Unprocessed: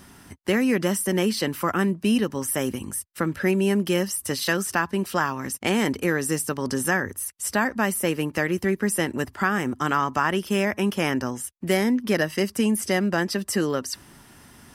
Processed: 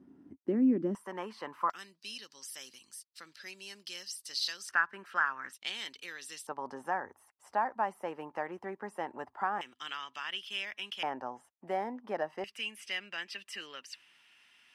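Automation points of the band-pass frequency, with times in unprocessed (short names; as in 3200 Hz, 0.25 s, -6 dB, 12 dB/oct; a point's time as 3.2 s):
band-pass, Q 3.9
290 Hz
from 0.95 s 1000 Hz
from 1.7 s 4500 Hz
from 4.69 s 1500 Hz
from 5.53 s 3700 Hz
from 6.47 s 840 Hz
from 9.61 s 3200 Hz
from 11.03 s 800 Hz
from 12.44 s 2700 Hz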